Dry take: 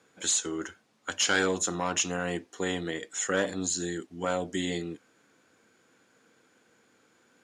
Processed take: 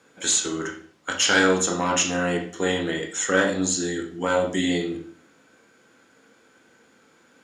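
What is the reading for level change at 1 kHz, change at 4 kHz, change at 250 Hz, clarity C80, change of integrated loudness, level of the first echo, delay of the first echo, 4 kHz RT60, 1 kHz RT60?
+7.0 dB, +6.5 dB, +8.0 dB, 12.0 dB, +7.0 dB, none, none, 0.45 s, 0.45 s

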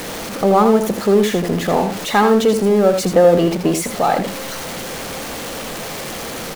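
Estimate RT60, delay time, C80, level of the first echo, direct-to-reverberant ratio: none, 81 ms, none, -7.5 dB, none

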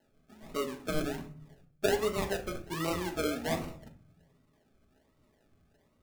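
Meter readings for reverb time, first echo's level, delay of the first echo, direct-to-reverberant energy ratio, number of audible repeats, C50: 0.45 s, none, none, 1.5 dB, none, 12.5 dB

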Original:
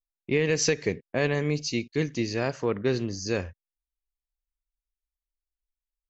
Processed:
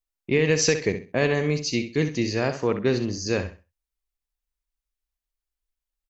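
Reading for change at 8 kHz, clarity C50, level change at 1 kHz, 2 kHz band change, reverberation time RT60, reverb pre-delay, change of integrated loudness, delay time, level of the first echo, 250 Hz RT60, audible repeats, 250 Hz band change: n/a, none, +3.5 dB, +3.5 dB, none, none, +3.5 dB, 65 ms, -10.0 dB, none, 3, +3.5 dB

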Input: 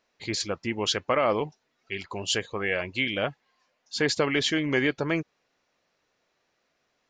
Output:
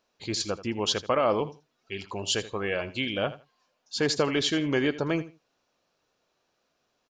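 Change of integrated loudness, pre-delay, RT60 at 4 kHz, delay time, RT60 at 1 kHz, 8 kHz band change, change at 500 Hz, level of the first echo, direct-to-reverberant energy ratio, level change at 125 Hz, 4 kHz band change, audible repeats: -0.5 dB, none, none, 81 ms, none, 0.0 dB, 0.0 dB, -15.5 dB, none, 0.0 dB, -0.5 dB, 2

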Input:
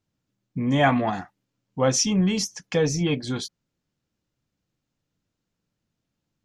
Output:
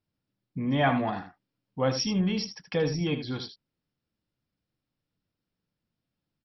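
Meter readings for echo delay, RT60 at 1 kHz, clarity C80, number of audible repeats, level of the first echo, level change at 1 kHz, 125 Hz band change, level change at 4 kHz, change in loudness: 78 ms, none, none, 1, -10.0 dB, -4.5 dB, -4.5 dB, -4.5 dB, -5.0 dB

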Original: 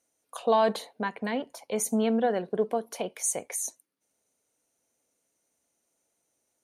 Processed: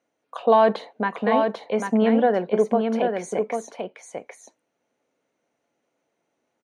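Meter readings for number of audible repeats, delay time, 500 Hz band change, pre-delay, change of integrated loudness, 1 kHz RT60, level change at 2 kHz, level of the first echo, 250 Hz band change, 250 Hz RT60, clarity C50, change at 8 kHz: 1, 0.794 s, +7.5 dB, none, +7.0 dB, none, +7.0 dB, -5.0 dB, +7.5 dB, none, none, -12.0 dB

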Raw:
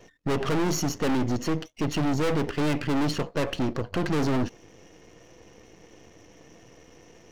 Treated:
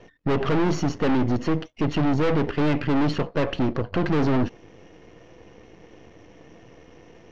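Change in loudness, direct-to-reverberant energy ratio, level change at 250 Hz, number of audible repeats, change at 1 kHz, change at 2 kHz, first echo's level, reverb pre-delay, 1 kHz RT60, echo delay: +3.5 dB, none, +3.5 dB, none, +3.0 dB, +2.0 dB, none, none, none, none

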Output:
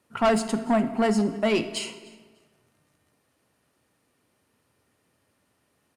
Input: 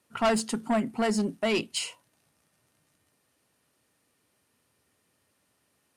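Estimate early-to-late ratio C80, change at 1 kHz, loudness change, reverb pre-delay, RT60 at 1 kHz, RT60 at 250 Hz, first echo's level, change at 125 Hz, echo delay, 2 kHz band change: 13.0 dB, +3.5 dB, +3.5 dB, 26 ms, 1.5 s, 1.6 s, -23.5 dB, +4.5 dB, 0.3 s, +1.5 dB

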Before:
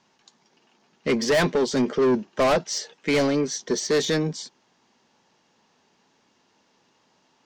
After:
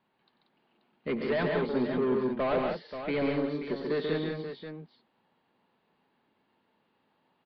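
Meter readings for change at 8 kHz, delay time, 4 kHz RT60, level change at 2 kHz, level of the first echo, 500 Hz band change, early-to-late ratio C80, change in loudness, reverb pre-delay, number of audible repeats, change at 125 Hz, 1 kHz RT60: under -40 dB, 92 ms, none, -8.0 dB, -13.5 dB, -6.5 dB, none, -7.5 dB, none, 4, -6.5 dB, none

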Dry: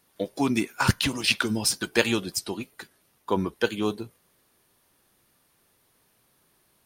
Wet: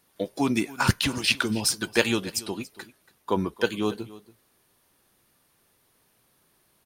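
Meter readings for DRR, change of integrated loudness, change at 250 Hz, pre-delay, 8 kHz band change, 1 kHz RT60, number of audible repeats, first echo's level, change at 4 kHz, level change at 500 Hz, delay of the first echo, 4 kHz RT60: none, 0.0 dB, 0.0 dB, none, 0.0 dB, none, 1, -19.0 dB, 0.0 dB, 0.0 dB, 0.282 s, none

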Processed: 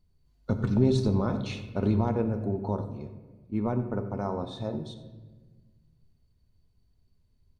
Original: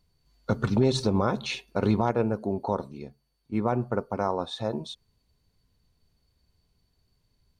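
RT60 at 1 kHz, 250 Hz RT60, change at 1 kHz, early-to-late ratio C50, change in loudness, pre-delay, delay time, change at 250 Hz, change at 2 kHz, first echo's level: 1.2 s, 1.9 s, -6.5 dB, 9.0 dB, -1.5 dB, 3 ms, 89 ms, 0.0 dB, -7.5 dB, -15.5 dB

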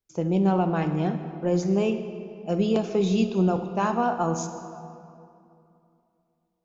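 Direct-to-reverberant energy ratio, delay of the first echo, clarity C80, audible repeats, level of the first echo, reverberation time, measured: 7.0 dB, none, 9.5 dB, none, none, 2.7 s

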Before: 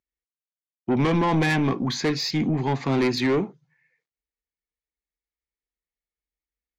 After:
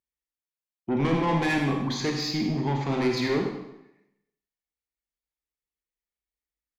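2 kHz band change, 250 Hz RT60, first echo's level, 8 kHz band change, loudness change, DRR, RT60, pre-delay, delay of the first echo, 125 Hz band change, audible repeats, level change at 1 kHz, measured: -2.5 dB, 0.85 s, -11.0 dB, -3.0 dB, -3.0 dB, 1.5 dB, 0.85 s, 29 ms, 0.1 s, -3.0 dB, 1, -2.5 dB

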